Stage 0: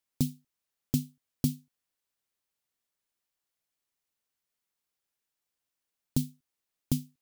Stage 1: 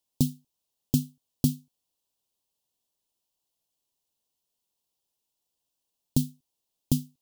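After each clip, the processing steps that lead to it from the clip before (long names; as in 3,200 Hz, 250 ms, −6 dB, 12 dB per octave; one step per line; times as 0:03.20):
flat-topped bell 1,700 Hz −15 dB 1.1 octaves
level +4 dB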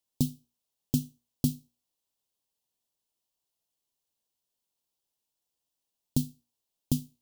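tuned comb filter 60 Hz, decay 0.34 s, harmonics all, mix 40%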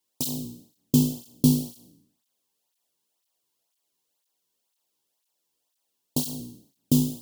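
peak hold with a decay on every bin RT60 0.70 s
through-zero flanger with one copy inverted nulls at 2 Hz, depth 1.7 ms
level +8 dB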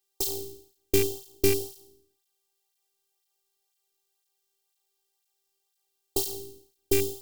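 loose part that buzzes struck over −20 dBFS, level −22 dBFS
phases set to zero 394 Hz
level +2.5 dB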